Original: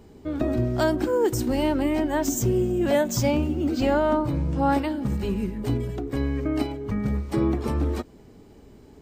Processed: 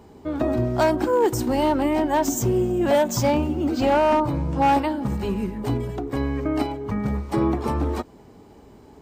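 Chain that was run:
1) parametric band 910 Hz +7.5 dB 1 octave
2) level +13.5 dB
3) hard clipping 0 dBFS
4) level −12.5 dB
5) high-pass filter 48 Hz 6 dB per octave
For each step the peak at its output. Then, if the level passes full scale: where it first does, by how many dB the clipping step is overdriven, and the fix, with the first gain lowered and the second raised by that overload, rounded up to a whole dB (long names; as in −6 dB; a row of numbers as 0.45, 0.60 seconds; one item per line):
−7.0, +6.5, 0.0, −12.5, −11.0 dBFS
step 2, 6.5 dB
step 2 +6.5 dB, step 4 −5.5 dB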